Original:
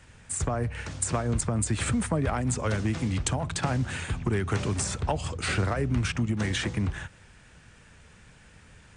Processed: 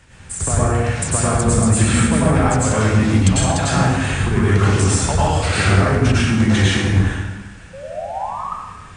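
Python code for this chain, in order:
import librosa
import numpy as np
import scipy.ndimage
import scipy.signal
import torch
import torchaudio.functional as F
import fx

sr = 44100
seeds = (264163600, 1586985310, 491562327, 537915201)

y = fx.spec_paint(x, sr, seeds[0], shape='rise', start_s=7.73, length_s=0.71, low_hz=520.0, high_hz=1300.0, level_db=-38.0)
y = fx.rev_plate(y, sr, seeds[1], rt60_s=1.2, hf_ratio=0.75, predelay_ms=85, drr_db=-8.0)
y = y * 10.0 ** (3.5 / 20.0)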